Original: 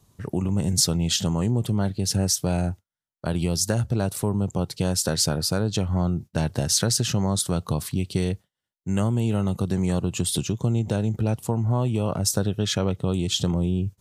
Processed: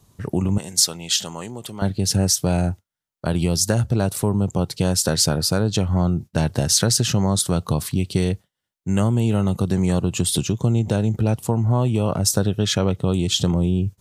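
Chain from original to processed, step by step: 0.58–1.82 s: high-pass 1.1 kHz 6 dB/octave; trim +4 dB

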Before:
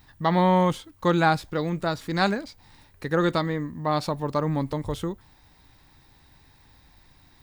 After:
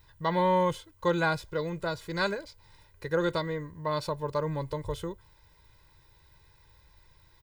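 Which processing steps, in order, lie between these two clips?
comb 2 ms, depth 84%; trim -7 dB

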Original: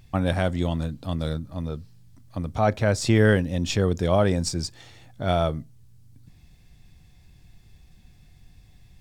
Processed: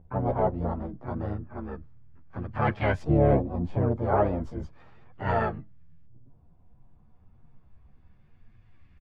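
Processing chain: LFO low-pass saw up 0.33 Hz 630–1900 Hz; harmony voices -7 st -4 dB, +5 st -3 dB, +12 st -17 dB; chorus voices 2, 0.76 Hz, delay 12 ms, depth 3.7 ms; trim -5.5 dB

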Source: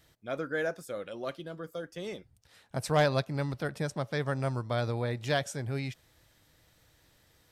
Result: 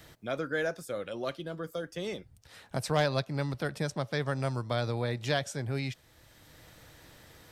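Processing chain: dynamic bell 4.3 kHz, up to +4 dB, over -49 dBFS, Q 0.97; three bands compressed up and down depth 40%

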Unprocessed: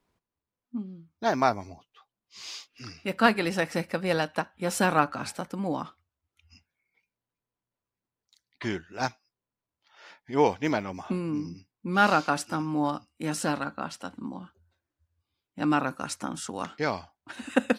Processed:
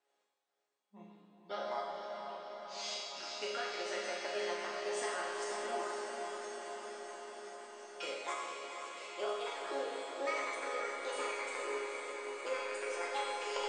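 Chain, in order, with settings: gliding tape speed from 76% -> 184%; high-pass 400 Hz 24 dB/octave; compression, threshold -36 dBFS, peak gain reduction 19.5 dB; brick-wall FIR low-pass 9.2 kHz; chord resonator C#3 major, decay 0.28 s; on a send: echo that smears into a reverb 465 ms, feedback 75%, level -5.5 dB; on the sum: Schroeder reverb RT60 1.5 s, combs from 30 ms, DRR -0.5 dB; trim +11 dB

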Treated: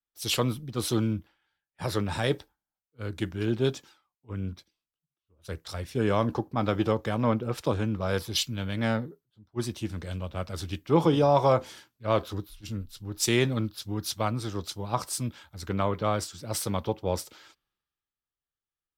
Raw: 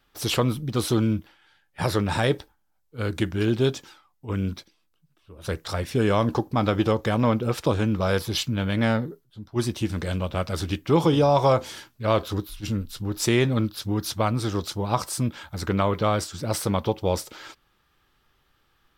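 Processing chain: Chebyshev shaper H 8 -44 dB, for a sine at -7 dBFS; three bands expanded up and down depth 70%; trim -5 dB

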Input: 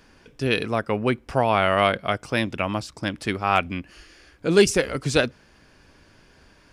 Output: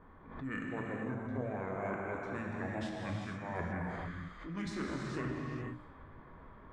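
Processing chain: formant shift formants -6 st; high-order bell 4.2 kHz -9.5 dB; hum notches 60/120/180/240/300 Hz; reverse; compression 8:1, threshold -36 dBFS, peak gain reduction 23.5 dB; reverse; level-controlled noise filter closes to 1.2 kHz, open at -35.5 dBFS; gated-style reverb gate 500 ms flat, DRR -2 dB; swell ahead of each attack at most 78 dB/s; trim -2.5 dB

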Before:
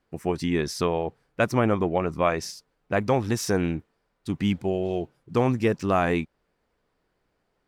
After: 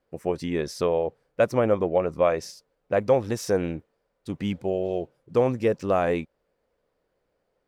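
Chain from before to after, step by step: peaking EQ 530 Hz +11 dB 0.59 oct; trim -4.5 dB

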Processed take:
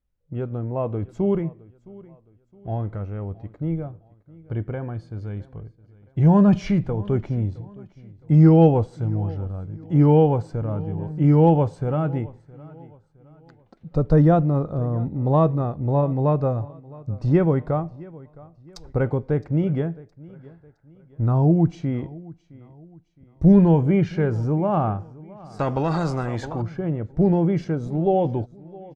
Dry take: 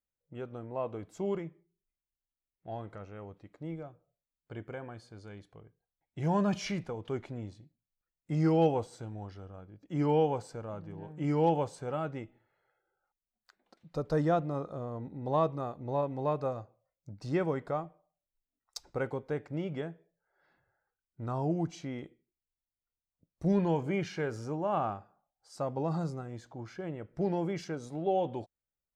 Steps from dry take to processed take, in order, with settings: RIAA curve playback; on a send: feedback delay 665 ms, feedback 39%, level -21.5 dB; 25.59–26.62 s: on the sum: spectrum-flattening compressor 2:1; trim +6.5 dB

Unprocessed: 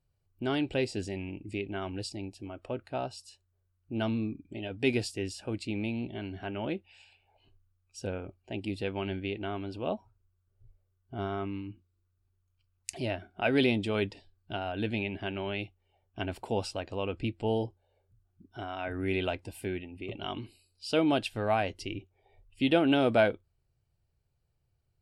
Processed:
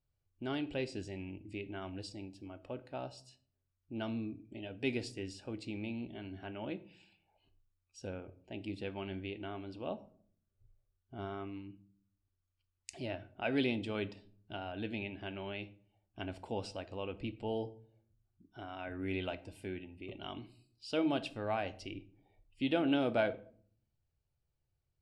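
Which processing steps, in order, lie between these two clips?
low-pass 7.8 kHz 12 dB/octave; on a send: reverberation RT60 0.55 s, pre-delay 3 ms, DRR 12.5 dB; on the sum: trim -7.5 dB

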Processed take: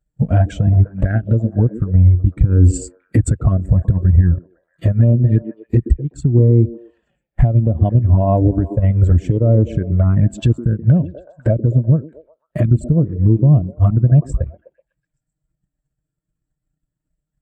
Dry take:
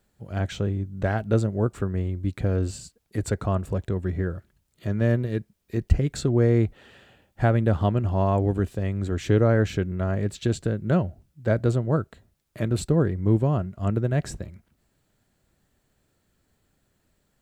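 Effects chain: graphic EQ with 31 bands 100 Hz -9 dB, 200 Hz -5 dB, 400 Hz -6 dB, 4 kHz -5 dB, 8 kHz +6 dB; touch-sensitive flanger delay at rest 6.6 ms, full sweep at -21 dBFS; transient shaper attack +11 dB, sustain -5 dB; compression 10:1, threshold -28 dBFS, peak gain reduction 25 dB; high-pass 48 Hz 6 dB/octave; waveshaping leveller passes 1; bass shelf 140 Hz +11.5 dB; band-stop 790 Hz, Q 25; repeats whose band climbs or falls 125 ms, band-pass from 300 Hz, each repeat 0.7 oct, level -9 dB; gain riding 0.5 s; loudness maximiser +18.5 dB; spectral contrast expander 1.5:1; trim -1 dB

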